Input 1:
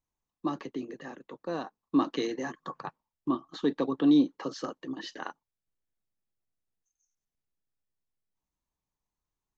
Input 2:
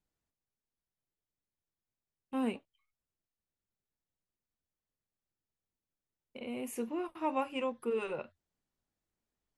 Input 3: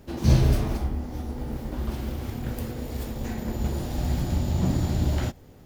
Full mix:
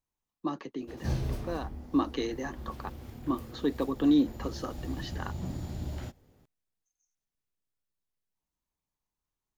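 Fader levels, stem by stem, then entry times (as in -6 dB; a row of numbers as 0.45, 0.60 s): -1.5 dB, off, -12.5 dB; 0.00 s, off, 0.80 s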